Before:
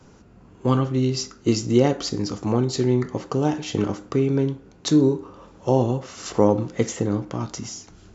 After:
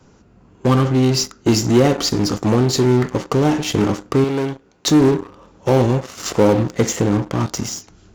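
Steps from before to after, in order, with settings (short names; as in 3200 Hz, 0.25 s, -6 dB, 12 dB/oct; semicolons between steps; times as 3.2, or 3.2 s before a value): in parallel at -4.5 dB: fuzz box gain 27 dB, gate -37 dBFS; 4.24–4.88 on the sum: low shelf 290 Hz -11.5 dB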